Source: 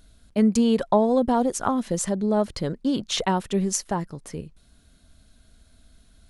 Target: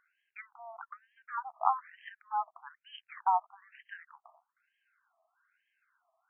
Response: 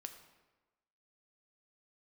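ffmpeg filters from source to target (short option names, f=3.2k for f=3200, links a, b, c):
-af "highshelf=f=2.3k:g=-11.5,afftfilt=real='re*between(b*sr/1024,890*pow(2300/890,0.5+0.5*sin(2*PI*1.1*pts/sr))/1.41,890*pow(2300/890,0.5+0.5*sin(2*PI*1.1*pts/sr))*1.41)':imag='im*between(b*sr/1024,890*pow(2300/890,0.5+0.5*sin(2*PI*1.1*pts/sr))/1.41,890*pow(2300/890,0.5+0.5*sin(2*PI*1.1*pts/sr))*1.41)':win_size=1024:overlap=0.75,volume=1.5dB"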